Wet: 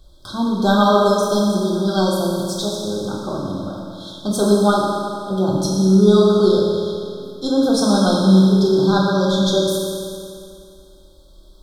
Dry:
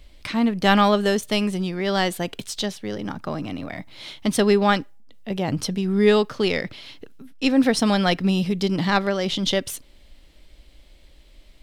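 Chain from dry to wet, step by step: brick-wall FIR band-stop 1600–3200 Hz; reverb RT60 2.4 s, pre-delay 3 ms, DRR -4.5 dB; gain -1.5 dB

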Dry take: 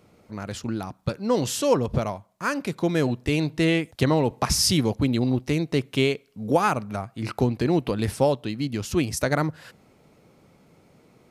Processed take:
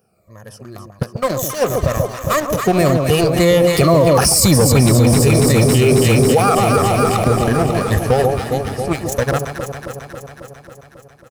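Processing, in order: moving spectral ripple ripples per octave 1.1, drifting -1.8 Hz, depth 14 dB; Doppler pass-by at 4.76, 19 m/s, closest 2.4 m; bell 3300 Hz -10 dB 0.9 oct; comb 1.7 ms, depth 53%; sample leveller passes 2; high shelf 9500 Hz +12 dB; on a send: echo with dull and thin repeats by turns 0.136 s, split 950 Hz, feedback 82%, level -6 dB; on the sum: maximiser +31.5 dB; gain -3.5 dB

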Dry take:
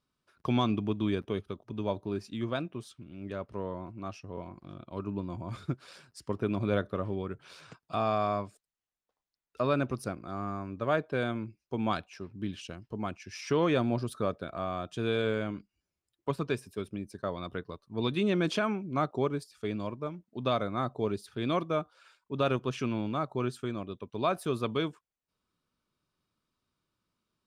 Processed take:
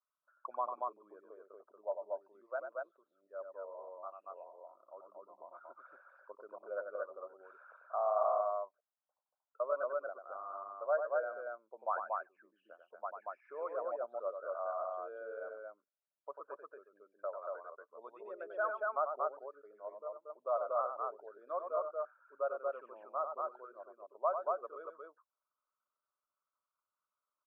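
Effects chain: formant sharpening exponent 2; vibrato 0.81 Hz 11 cents; elliptic band-pass 580–1500 Hz, stop band 80 dB; loudspeakers at several distances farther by 32 m -7 dB, 80 m -2 dB; gain -3.5 dB

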